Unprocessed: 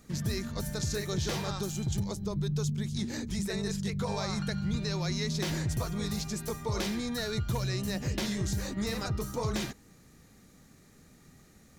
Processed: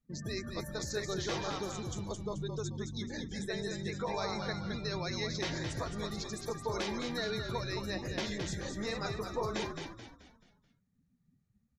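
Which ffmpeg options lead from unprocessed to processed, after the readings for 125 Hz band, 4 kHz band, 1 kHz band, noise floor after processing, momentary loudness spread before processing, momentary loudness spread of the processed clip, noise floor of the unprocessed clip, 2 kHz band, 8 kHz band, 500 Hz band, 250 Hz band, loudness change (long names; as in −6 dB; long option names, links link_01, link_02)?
−8.5 dB, −2.5 dB, +0.5 dB, −75 dBFS, 3 LU, 4 LU, −59 dBFS, −0.5 dB, −6.0 dB, −0.5 dB, −6.0 dB, −4.5 dB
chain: -filter_complex "[0:a]afftdn=noise_reduction=31:noise_floor=-43,bass=frequency=250:gain=-11,treble=frequency=4000:gain=-4,asplit=2[link_01][link_02];[link_02]asplit=5[link_03][link_04][link_05][link_06][link_07];[link_03]adelay=216,afreqshift=-47,volume=-6dB[link_08];[link_04]adelay=432,afreqshift=-94,volume=-14dB[link_09];[link_05]adelay=648,afreqshift=-141,volume=-21.9dB[link_10];[link_06]adelay=864,afreqshift=-188,volume=-29.9dB[link_11];[link_07]adelay=1080,afreqshift=-235,volume=-37.8dB[link_12];[link_08][link_09][link_10][link_11][link_12]amix=inputs=5:normalize=0[link_13];[link_01][link_13]amix=inputs=2:normalize=0"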